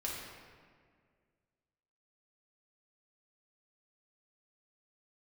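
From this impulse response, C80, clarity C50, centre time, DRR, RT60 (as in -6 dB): 2.0 dB, 0.0 dB, 91 ms, -5.0 dB, 1.9 s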